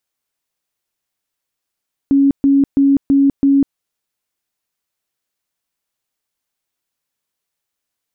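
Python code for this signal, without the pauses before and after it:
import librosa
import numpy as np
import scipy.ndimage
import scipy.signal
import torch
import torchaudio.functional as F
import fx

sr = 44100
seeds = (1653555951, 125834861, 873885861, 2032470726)

y = fx.tone_burst(sr, hz=277.0, cycles=55, every_s=0.33, bursts=5, level_db=-8.0)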